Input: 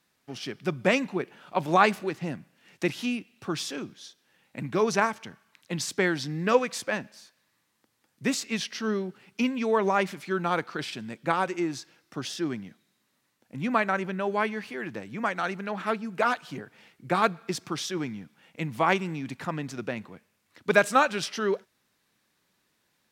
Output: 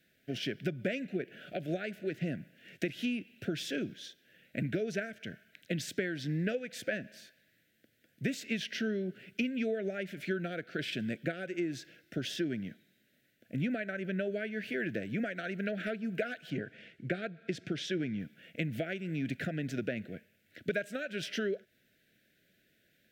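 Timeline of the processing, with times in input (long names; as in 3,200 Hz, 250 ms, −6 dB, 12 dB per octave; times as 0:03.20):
0:16.50–0:18.20: high-frequency loss of the air 58 metres
whole clip: downward compressor 12 to 1, threshold −33 dBFS; elliptic band-stop filter 660–1,500 Hz, stop band 50 dB; flat-topped bell 7,000 Hz −9 dB; level +4 dB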